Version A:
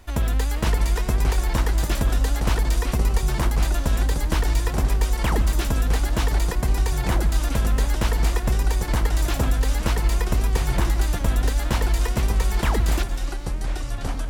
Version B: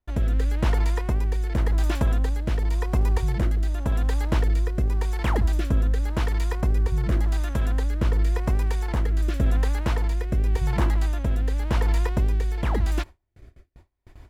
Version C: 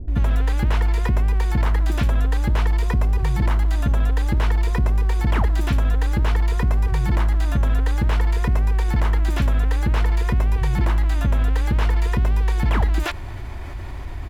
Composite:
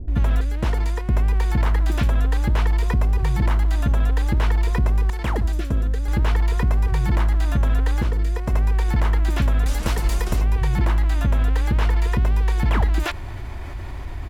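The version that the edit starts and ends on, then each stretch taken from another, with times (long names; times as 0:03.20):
C
0:00.41–0:01.09: punch in from B
0:05.10–0:06.08: punch in from B
0:08.02–0:08.53: punch in from B
0:09.66–0:10.41: punch in from A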